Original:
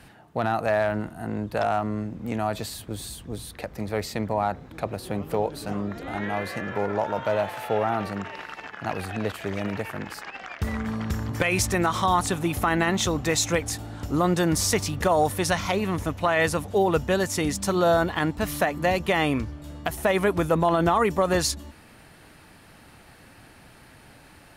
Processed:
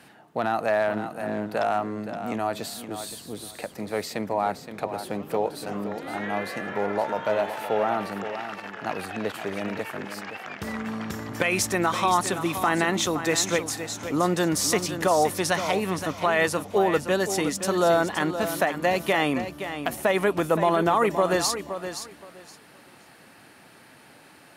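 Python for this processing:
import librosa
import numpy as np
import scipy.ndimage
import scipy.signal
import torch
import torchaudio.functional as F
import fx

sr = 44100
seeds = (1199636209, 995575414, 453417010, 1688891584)

y = scipy.signal.sosfilt(scipy.signal.butter(2, 190.0, 'highpass', fs=sr, output='sos'), x)
y = fx.echo_feedback(y, sr, ms=520, feedback_pct=20, wet_db=-10)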